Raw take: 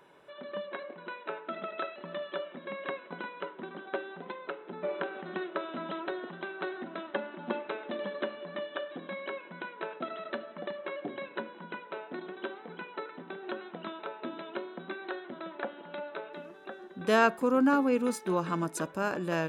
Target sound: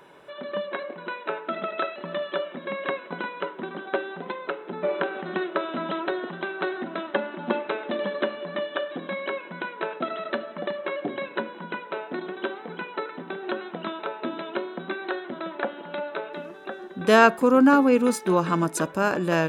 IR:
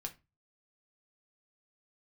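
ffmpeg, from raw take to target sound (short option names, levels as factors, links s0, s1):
-af "volume=2.51"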